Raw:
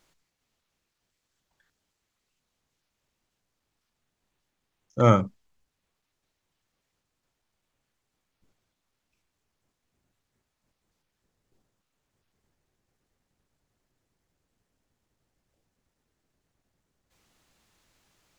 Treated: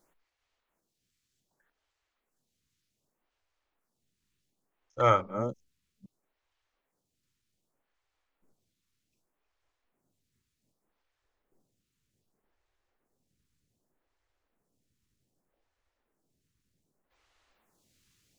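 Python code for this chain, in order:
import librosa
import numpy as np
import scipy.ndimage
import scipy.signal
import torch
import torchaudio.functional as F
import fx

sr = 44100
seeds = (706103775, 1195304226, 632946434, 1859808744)

y = fx.reverse_delay(x, sr, ms=404, wet_db=-11.5)
y = fx.stagger_phaser(y, sr, hz=0.65)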